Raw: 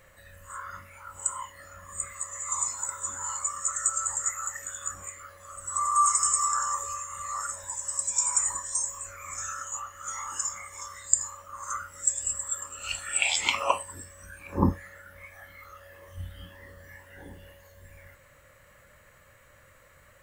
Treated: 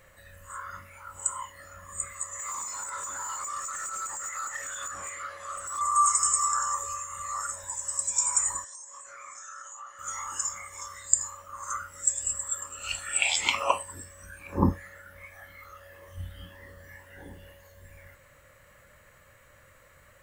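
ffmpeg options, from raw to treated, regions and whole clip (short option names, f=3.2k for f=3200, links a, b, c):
-filter_complex "[0:a]asettb=1/sr,asplit=3[a][b][c];[a]atrim=end=2.394[d];[b]atrim=start=2.39:end=5.81,asetpts=PTS-STARTPTS,afade=t=in:d=0.004:c=qsin,afade=t=out:st=3.416:d=0.004:c=qsin,lowpass=10k,acompressor=threshold=-37dB:ratio=3:attack=3.2:release=140:knee=1:detection=peak,asplit=2[e][f];[f]highpass=f=720:p=1,volume=16dB,asoftclip=type=tanh:threshold=-23.5dB[g];[e][g]amix=inputs=2:normalize=0,lowpass=f=4.5k:p=1,volume=-6dB[h];[c]atrim=start=5.806[i];[d][h]acrossfade=d=0.004:c1=hsin:c2=qsin[j];[j][i]acrossfade=d=0.004:c1=qsin:c2=hsin,asettb=1/sr,asplit=3[k][l][m];[k]atrim=end=8.644[n];[l]atrim=start=8.64:end=9.99,asetpts=PTS-STARTPTS,afade=t=in:d=0.004:c=qsin,afade=t=out:st=1.346:d=0.004:c=qsin,acompressor=threshold=-38dB:ratio=8:attack=3.2:release=140:knee=1:detection=peak,highpass=400,equalizer=f=490:t=q:w=4:g=-3,equalizer=f=2.6k:t=q:w=4:g=-7,equalizer=f=7.5k:t=q:w=4:g=-4,lowpass=f=8.6k:w=0.5412,lowpass=f=8.6k:w=1.3066[o];[m]atrim=start=9.986[p];[n][o]acrossfade=d=0.004:c1=hsin:c2=qsin[q];[q][p]acrossfade=d=0.004:c1=qsin:c2=hsin"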